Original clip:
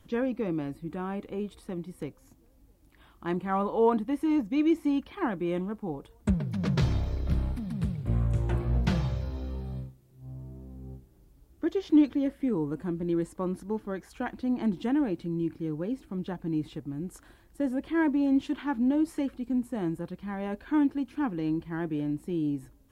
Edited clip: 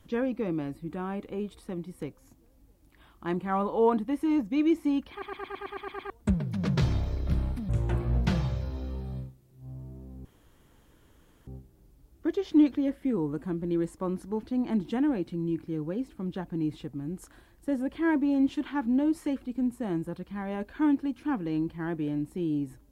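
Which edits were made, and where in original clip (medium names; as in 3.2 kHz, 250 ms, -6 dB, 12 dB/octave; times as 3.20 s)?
5.11 s: stutter in place 0.11 s, 9 plays
7.69–8.29 s: delete
10.85 s: insert room tone 1.22 s
13.81–14.35 s: delete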